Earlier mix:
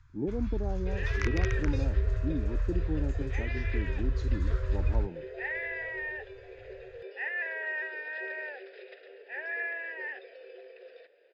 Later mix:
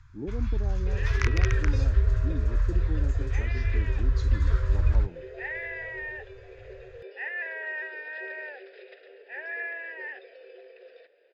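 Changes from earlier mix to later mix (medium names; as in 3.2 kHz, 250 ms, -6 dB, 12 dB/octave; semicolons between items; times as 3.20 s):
speech -3.5 dB; first sound +5.5 dB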